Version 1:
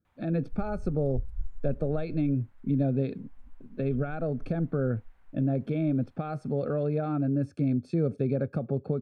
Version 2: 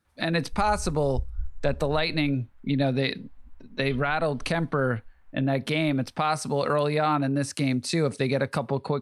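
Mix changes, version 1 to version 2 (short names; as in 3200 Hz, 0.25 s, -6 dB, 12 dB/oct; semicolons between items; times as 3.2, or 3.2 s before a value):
speech: remove running mean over 45 samples; background: add bell 65 Hz +12 dB 0.4 oct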